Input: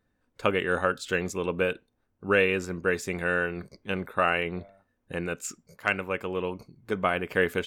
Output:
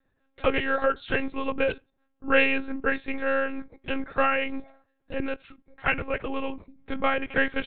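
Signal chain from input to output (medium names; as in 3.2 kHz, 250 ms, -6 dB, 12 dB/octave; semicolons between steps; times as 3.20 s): comb 5.8 ms, depth 72%; monotone LPC vocoder at 8 kHz 270 Hz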